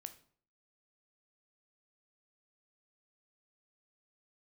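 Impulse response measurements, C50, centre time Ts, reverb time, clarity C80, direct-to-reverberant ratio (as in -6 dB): 14.0 dB, 6 ms, 0.55 s, 18.5 dB, 9.0 dB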